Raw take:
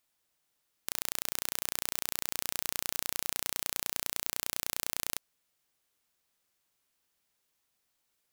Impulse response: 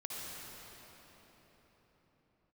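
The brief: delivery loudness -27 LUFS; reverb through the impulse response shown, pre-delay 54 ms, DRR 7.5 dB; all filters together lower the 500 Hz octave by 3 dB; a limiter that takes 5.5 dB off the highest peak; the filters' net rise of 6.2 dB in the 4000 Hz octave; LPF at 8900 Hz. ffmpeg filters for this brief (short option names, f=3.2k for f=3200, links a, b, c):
-filter_complex "[0:a]lowpass=8.9k,equalizer=f=500:t=o:g=-4,equalizer=f=4k:t=o:g=8,alimiter=limit=-14.5dB:level=0:latency=1,asplit=2[a][b];[1:a]atrim=start_sample=2205,adelay=54[c];[b][c]afir=irnorm=-1:irlink=0,volume=-8.5dB[d];[a][d]amix=inputs=2:normalize=0,volume=12dB"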